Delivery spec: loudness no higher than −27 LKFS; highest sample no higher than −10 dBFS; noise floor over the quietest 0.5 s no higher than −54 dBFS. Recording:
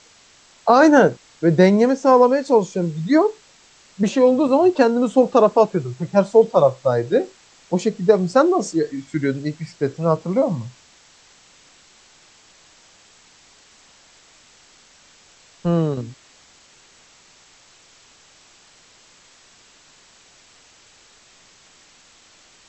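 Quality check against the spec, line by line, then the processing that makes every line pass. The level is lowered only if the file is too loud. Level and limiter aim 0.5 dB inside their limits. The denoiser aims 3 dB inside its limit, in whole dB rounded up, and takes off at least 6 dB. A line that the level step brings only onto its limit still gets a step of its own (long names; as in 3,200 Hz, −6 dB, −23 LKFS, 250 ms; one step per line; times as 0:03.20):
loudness −18.0 LKFS: out of spec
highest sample −2.0 dBFS: out of spec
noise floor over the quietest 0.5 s −52 dBFS: out of spec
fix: level −9.5 dB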